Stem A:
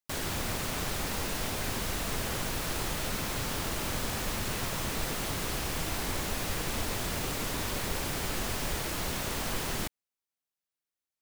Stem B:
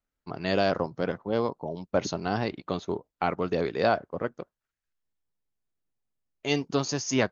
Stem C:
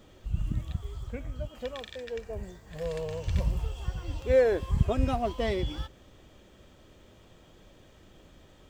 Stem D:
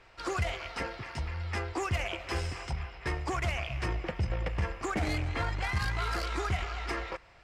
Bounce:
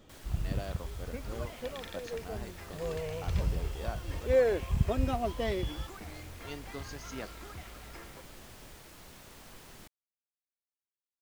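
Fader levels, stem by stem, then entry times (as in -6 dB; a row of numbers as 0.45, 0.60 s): -18.5, -17.5, -3.0, -15.5 dB; 0.00, 0.00, 0.00, 1.05 s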